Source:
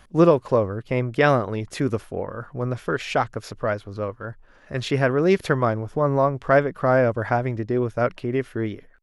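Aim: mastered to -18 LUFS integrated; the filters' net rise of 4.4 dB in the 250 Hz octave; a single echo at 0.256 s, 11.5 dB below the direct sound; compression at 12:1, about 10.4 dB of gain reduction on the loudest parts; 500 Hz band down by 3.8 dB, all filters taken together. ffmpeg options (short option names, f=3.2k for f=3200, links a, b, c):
-af "equalizer=f=250:t=o:g=8.5,equalizer=f=500:t=o:g=-7.5,acompressor=threshold=-19dB:ratio=12,aecho=1:1:256:0.266,volume=8.5dB"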